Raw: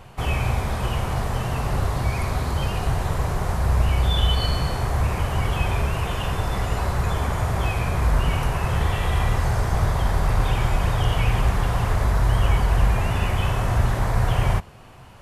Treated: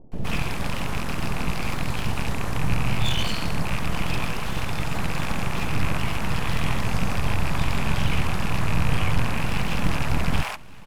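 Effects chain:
loose part that buzzes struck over −22 dBFS, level −18 dBFS
full-wave rectification
multiband delay without the direct sound lows, highs 170 ms, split 580 Hz
tempo change 1.4×
on a send: single-tap delay 1,169 ms −23 dB

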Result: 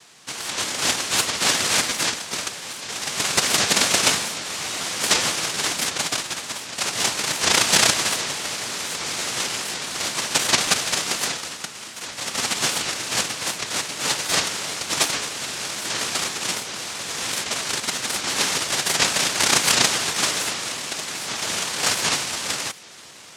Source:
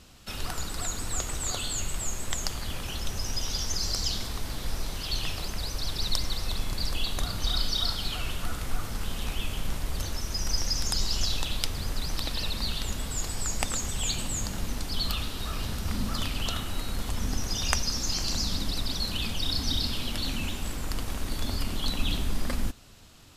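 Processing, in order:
high-shelf EQ 3,100 Hz +11.5 dB
automatic gain control gain up to 7 dB
cochlear-implant simulation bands 1
regular buffer underruns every 0.73 s, samples 512, repeat, from 0:00.43
wow of a warped record 78 rpm, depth 250 cents

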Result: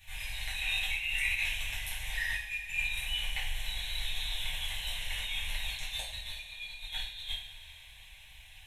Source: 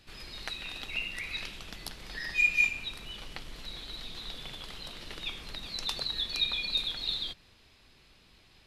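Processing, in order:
guitar amp tone stack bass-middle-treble 10-0-10
compressor whose output falls as the input rises −42 dBFS, ratio −0.5
phaser with its sweep stopped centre 1,300 Hz, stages 6
coupled-rooms reverb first 0.49 s, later 4.7 s, from −19 dB, DRR −8 dB
level +2 dB

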